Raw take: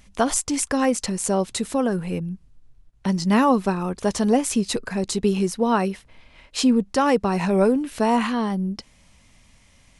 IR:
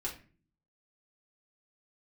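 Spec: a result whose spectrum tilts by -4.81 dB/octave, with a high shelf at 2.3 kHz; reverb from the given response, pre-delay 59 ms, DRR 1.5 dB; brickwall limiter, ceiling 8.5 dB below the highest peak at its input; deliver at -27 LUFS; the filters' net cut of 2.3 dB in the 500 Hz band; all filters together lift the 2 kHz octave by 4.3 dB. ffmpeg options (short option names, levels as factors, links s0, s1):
-filter_complex "[0:a]equalizer=f=500:t=o:g=-3,equalizer=f=2000:t=o:g=7,highshelf=f=2300:g=-3,alimiter=limit=0.188:level=0:latency=1,asplit=2[s0][s1];[1:a]atrim=start_sample=2205,adelay=59[s2];[s1][s2]afir=irnorm=-1:irlink=0,volume=0.708[s3];[s0][s3]amix=inputs=2:normalize=0,volume=0.631"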